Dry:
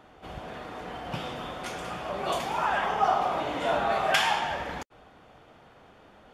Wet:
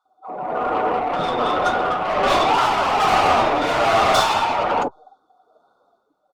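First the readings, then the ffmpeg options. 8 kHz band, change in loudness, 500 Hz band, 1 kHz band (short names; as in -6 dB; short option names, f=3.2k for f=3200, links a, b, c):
+8.5 dB, +10.0 dB, +11.0 dB, +11.0 dB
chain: -filter_complex "[0:a]highpass=200,afftfilt=real='re*(1-between(b*sr/4096,1500,3400))':imag='im*(1-between(b*sr/4096,1500,3400))':win_size=4096:overlap=0.75,afftdn=nr=31:nf=-39,dynaudnorm=f=150:g=7:m=8.5dB,asplit=2[a][b];[b]highpass=f=720:p=1,volume=30dB,asoftclip=type=tanh:threshold=-4.5dB[c];[a][c]amix=inputs=2:normalize=0,lowpass=f=3.1k:p=1,volume=-6dB,tremolo=f=1.2:d=0.36,flanger=delay=2.4:depth=9.3:regen=-69:speed=0.38:shape=sinusoidal,acrossover=split=750[d][e];[d]adelay=50[f];[f][e]amix=inputs=2:normalize=0,flanger=delay=6.5:depth=6.1:regen=-50:speed=0.79:shape=sinusoidal,asplit=2[g][h];[h]aeval=exprs='clip(val(0),-1,0.0299)':c=same,volume=-8.5dB[i];[g][i]amix=inputs=2:normalize=0,volume=3.5dB" -ar 48000 -c:a libopus -b:a 32k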